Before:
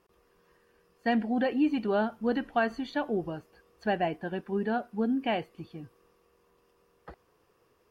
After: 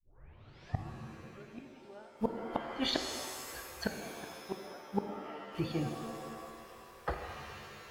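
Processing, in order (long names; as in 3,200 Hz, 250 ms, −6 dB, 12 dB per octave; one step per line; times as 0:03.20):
turntable start at the beginning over 1.81 s
parametric band 230 Hz −12 dB 0.65 octaves
gate with flip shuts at −31 dBFS, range −37 dB
reverb with rising layers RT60 1.7 s, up +7 semitones, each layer −2 dB, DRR 5 dB
level +12 dB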